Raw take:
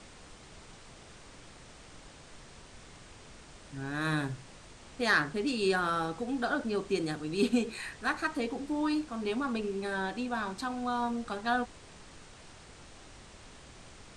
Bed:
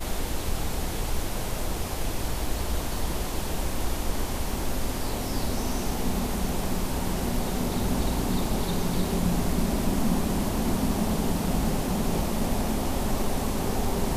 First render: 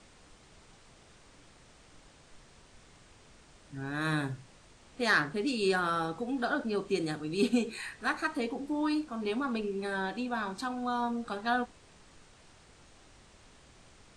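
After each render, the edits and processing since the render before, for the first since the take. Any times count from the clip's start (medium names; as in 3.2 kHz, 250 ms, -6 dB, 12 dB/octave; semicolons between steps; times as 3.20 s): noise print and reduce 6 dB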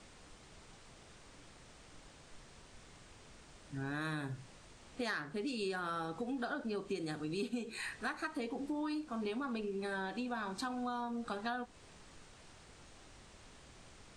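compression 6:1, threshold -36 dBFS, peak gain reduction 14 dB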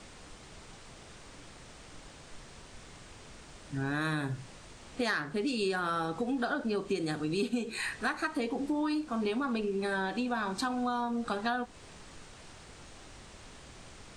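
trim +7 dB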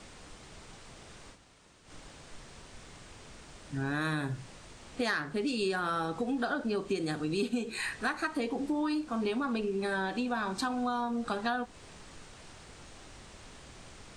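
1.35–1.87 s: room tone, crossfade 0.10 s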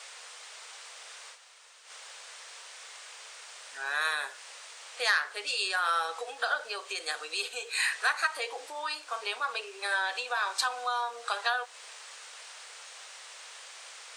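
elliptic high-pass 470 Hz, stop band 80 dB; tilt shelf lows -9.5 dB, about 670 Hz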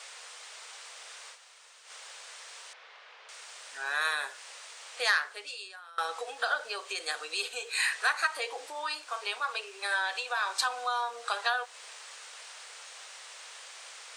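2.73–3.29 s: distance through air 290 m; 5.15–5.98 s: fade out quadratic, to -24 dB; 9.04–10.49 s: high-pass 410 Hz 6 dB/octave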